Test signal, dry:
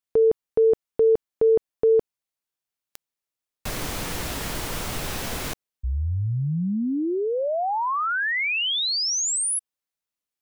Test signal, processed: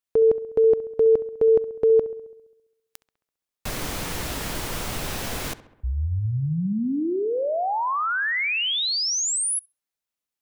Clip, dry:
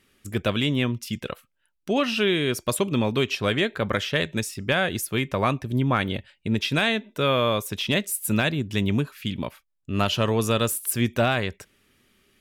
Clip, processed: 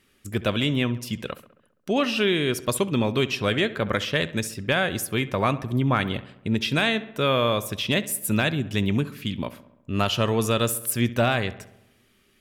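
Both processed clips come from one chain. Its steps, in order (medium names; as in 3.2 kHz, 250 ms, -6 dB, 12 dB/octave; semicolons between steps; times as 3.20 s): filtered feedback delay 67 ms, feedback 62%, low-pass 3 kHz, level -16 dB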